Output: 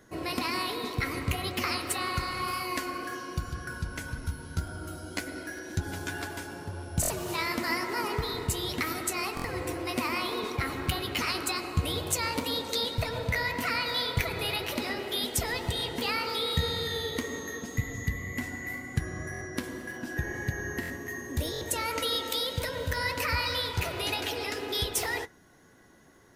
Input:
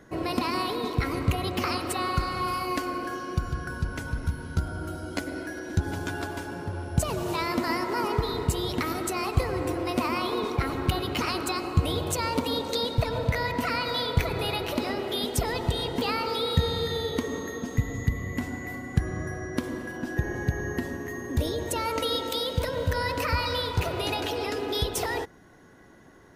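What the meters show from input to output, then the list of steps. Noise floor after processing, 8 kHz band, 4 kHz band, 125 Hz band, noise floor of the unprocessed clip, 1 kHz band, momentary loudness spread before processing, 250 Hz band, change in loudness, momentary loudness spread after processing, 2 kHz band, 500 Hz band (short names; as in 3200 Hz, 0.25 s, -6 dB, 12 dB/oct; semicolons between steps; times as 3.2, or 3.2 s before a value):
-43 dBFS, +2.5 dB, +0.5 dB, -5.5 dB, -39 dBFS, -4.0 dB, 6 LU, -5.5 dB, -2.5 dB, 8 LU, +1.0 dB, -5.5 dB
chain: high shelf 3600 Hz +9.5 dB; flange 1.9 Hz, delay 7.5 ms, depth 7.2 ms, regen -56%; dynamic EQ 2000 Hz, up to +6 dB, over -48 dBFS, Q 1.8; stuck buffer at 7.01/9.35/19.32/20.81/21.52, samples 1024, times 3; gain -1.5 dB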